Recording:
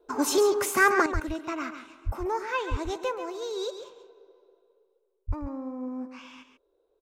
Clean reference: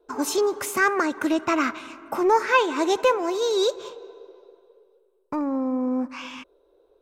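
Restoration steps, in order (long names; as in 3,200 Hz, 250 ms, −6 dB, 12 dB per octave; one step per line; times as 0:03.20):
high-pass at the plosives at 0:01.13/0:02.05/0:02.70/0:05.27
echo removal 137 ms −9.5 dB
level 0 dB, from 0:01.06 +11 dB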